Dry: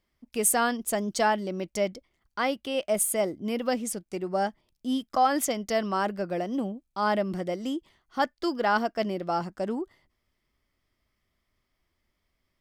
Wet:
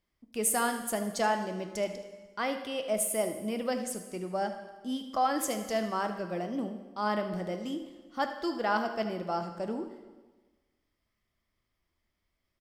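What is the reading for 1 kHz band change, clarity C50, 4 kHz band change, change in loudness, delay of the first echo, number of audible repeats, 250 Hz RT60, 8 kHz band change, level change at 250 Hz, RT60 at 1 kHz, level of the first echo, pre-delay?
-4.0 dB, 8.0 dB, -4.0 dB, -4.0 dB, 77 ms, 1, 1.3 s, -4.0 dB, -4.0 dB, 1.3 s, -14.5 dB, 5 ms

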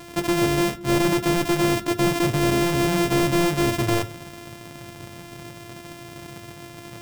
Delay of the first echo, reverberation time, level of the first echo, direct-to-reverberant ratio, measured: no echo, 0.40 s, no echo, 9.0 dB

